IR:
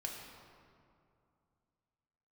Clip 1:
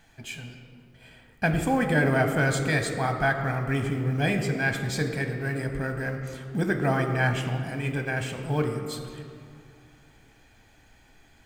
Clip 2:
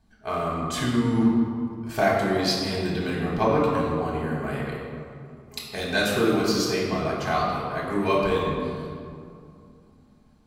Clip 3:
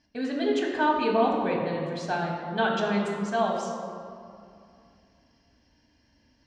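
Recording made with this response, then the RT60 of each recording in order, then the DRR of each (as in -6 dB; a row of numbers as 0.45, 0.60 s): 3; 2.5, 2.5, 2.5 s; 4.5, -5.5, -1.0 dB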